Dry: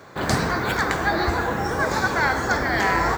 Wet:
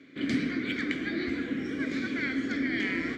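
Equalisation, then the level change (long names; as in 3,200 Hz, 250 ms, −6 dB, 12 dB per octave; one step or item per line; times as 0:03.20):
formant filter i
+6.5 dB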